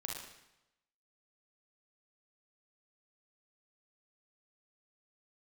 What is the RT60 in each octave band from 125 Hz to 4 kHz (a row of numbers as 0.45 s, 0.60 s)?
0.95 s, 0.85 s, 0.90 s, 0.90 s, 0.90 s, 0.85 s